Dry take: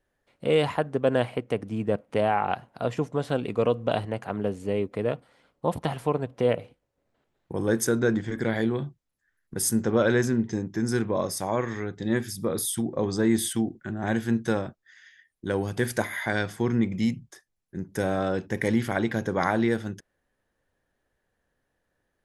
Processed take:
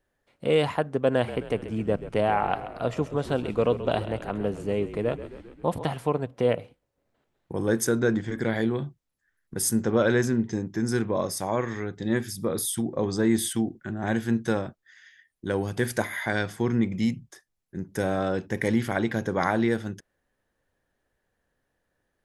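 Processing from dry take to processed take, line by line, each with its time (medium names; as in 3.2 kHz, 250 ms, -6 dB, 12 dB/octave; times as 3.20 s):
1.10–5.86 s: frequency-shifting echo 132 ms, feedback 62%, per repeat -42 Hz, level -13 dB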